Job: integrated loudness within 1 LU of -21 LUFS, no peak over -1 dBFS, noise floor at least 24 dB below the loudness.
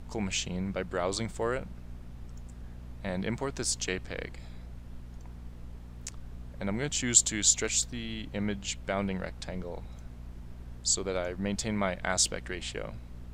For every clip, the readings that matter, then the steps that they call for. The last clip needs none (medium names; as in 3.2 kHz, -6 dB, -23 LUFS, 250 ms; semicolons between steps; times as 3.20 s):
hum 60 Hz; highest harmonic 240 Hz; hum level -43 dBFS; noise floor -46 dBFS; noise floor target -55 dBFS; loudness -30.5 LUFS; peak level -6.5 dBFS; loudness target -21.0 LUFS
-> de-hum 60 Hz, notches 4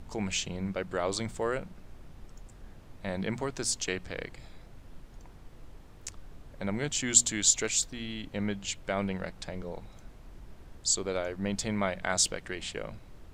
hum not found; noise floor -51 dBFS; noise floor target -55 dBFS
-> noise print and reduce 6 dB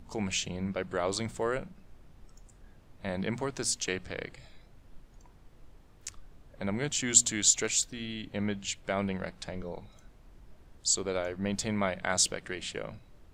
noise floor -57 dBFS; loudness -30.5 LUFS; peak level -6.5 dBFS; loudness target -21.0 LUFS
-> trim +9.5 dB; peak limiter -1 dBFS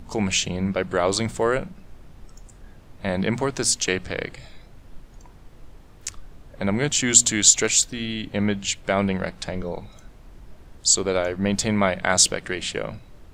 loudness -21.5 LUFS; peak level -1.0 dBFS; noise floor -48 dBFS